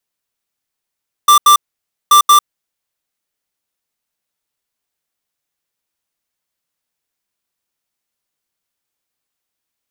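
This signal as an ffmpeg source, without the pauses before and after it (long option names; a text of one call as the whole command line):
ffmpeg -f lavfi -i "aevalsrc='0.473*(2*lt(mod(1180*t,1),0.5)-1)*clip(min(mod(mod(t,0.83),0.18),0.1-mod(mod(t,0.83),0.18))/0.005,0,1)*lt(mod(t,0.83),0.36)':duration=1.66:sample_rate=44100" out.wav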